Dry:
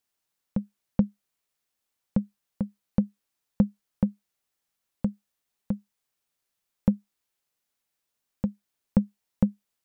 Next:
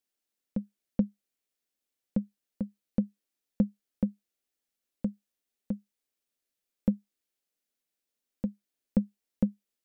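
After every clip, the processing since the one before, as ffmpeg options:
-af "equalizer=f=125:t=o:w=1:g=-10,equalizer=f=250:t=o:w=1:g=6,equalizer=f=500:t=o:w=1:g=3,equalizer=f=1k:t=o:w=1:g=-7,volume=-5dB"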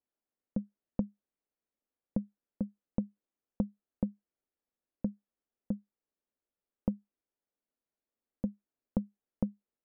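-af "lowpass=1.2k,acompressor=threshold=-27dB:ratio=6"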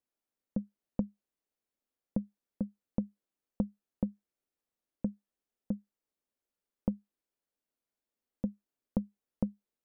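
-af "equalizer=f=64:w=5.8:g=-3"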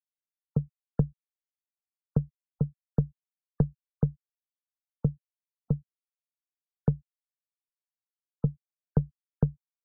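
-af "adynamicsmooth=sensitivity=6:basefreq=790,afreqshift=-59,afftfilt=real='re*gte(hypot(re,im),0.00355)':imag='im*gte(hypot(re,im),0.00355)':win_size=1024:overlap=0.75,volume=7.5dB"

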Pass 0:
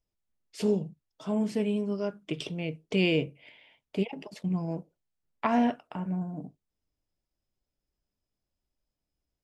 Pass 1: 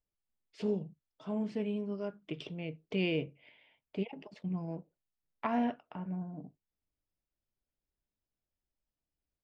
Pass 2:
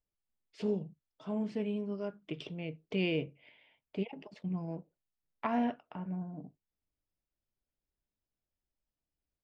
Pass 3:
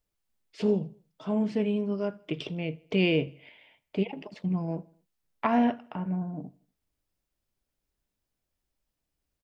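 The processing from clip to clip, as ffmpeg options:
-af "lowpass=3.8k,volume=-6.5dB"
-af anull
-af "aecho=1:1:80|160|240:0.0631|0.0303|0.0145,volume=7.5dB"

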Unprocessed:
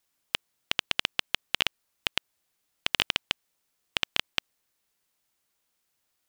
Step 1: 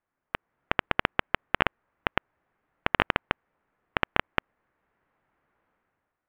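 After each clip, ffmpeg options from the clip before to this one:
-af "lowpass=f=1.8k:w=0.5412,lowpass=f=1.8k:w=1.3066,dynaudnorm=f=100:g=9:m=11dB,volume=1.5dB"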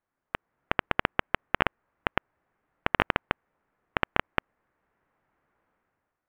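-af "highshelf=f=4.9k:g=-9"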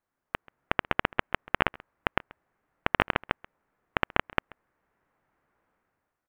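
-af "aecho=1:1:134:0.0708"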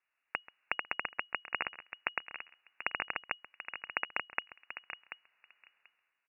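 -filter_complex "[0:a]asplit=2[a][b];[b]adelay=736,lowpass=f=1.1k:p=1,volume=-15.5dB,asplit=2[c][d];[d]adelay=736,lowpass=f=1.1k:p=1,volume=0.16[e];[a][c][e]amix=inputs=3:normalize=0,acompressor=threshold=-29dB:ratio=8,lowpass=f=2.5k:t=q:w=0.5098,lowpass=f=2.5k:t=q:w=0.6013,lowpass=f=2.5k:t=q:w=0.9,lowpass=f=2.5k:t=q:w=2.563,afreqshift=-2900"

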